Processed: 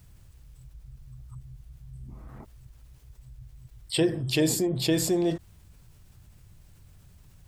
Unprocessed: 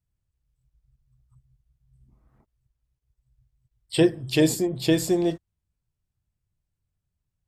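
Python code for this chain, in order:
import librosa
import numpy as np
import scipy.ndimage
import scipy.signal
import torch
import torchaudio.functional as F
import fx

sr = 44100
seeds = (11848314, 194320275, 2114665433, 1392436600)

y = fx.env_flatten(x, sr, amount_pct=50)
y = y * 10.0 ** (-5.5 / 20.0)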